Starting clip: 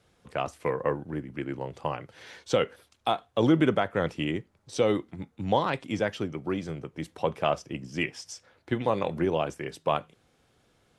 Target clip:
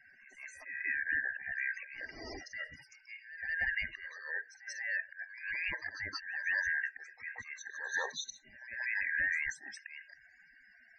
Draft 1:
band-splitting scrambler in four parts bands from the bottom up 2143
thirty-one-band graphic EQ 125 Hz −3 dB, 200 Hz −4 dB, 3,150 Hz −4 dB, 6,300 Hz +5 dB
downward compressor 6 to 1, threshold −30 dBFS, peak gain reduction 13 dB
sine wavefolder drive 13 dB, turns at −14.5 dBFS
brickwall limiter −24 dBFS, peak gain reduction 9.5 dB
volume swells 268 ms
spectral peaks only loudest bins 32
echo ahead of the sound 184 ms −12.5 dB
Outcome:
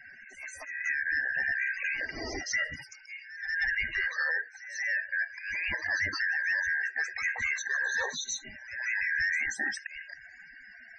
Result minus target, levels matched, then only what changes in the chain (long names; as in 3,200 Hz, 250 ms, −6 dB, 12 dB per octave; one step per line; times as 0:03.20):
sine wavefolder: distortion +20 dB
change: sine wavefolder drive 2 dB, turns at −14.5 dBFS